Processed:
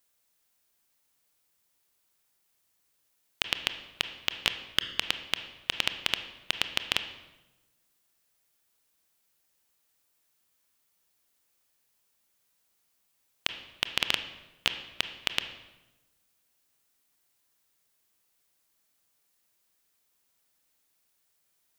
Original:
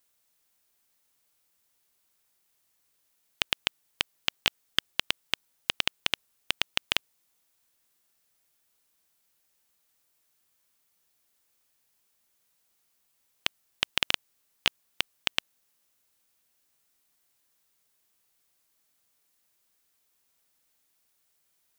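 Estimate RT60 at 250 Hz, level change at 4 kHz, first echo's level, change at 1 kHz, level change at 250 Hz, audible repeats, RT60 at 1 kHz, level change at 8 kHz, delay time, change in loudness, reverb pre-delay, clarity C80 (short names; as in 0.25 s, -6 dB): 1.3 s, -0.5 dB, none, -0.5 dB, 0.0 dB, none, 0.95 s, -1.0 dB, none, -0.5 dB, 24 ms, 12.5 dB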